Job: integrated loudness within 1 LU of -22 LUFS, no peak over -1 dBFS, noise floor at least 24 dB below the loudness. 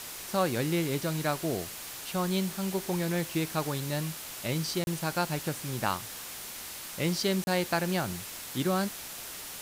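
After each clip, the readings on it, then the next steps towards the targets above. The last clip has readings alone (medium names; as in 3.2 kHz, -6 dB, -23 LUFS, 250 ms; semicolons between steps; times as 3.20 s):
dropouts 2; longest dropout 31 ms; noise floor -42 dBFS; noise floor target -56 dBFS; loudness -31.5 LUFS; peak level -13.0 dBFS; loudness target -22.0 LUFS
-> interpolate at 4.84/7.44 s, 31 ms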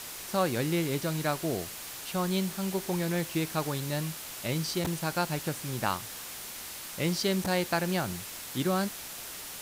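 dropouts 0; noise floor -42 dBFS; noise floor target -56 dBFS
-> noise reduction 14 dB, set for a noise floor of -42 dBFS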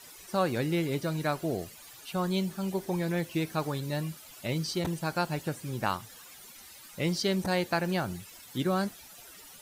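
noise floor -51 dBFS; noise floor target -56 dBFS
-> noise reduction 6 dB, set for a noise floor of -51 dBFS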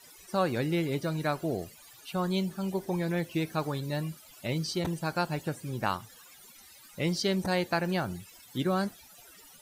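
noise floor -54 dBFS; noise floor target -56 dBFS
-> noise reduction 6 dB, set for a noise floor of -54 dBFS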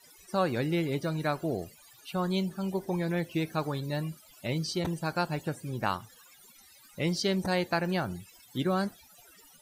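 noise floor -57 dBFS; loudness -31.5 LUFS; peak level -14.0 dBFS; loudness target -22.0 LUFS
-> trim +9.5 dB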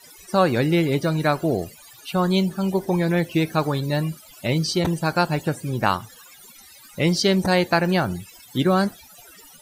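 loudness -22.0 LUFS; peak level -4.5 dBFS; noise floor -48 dBFS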